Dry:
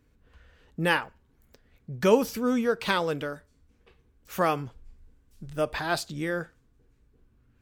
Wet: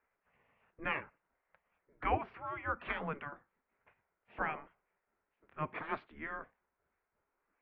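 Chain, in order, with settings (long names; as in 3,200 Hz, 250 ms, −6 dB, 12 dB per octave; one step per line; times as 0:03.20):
single-sideband voice off tune −150 Hz 280–2,400 Hz
gate on every frequency bin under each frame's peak −10 dB weak
level −2 dB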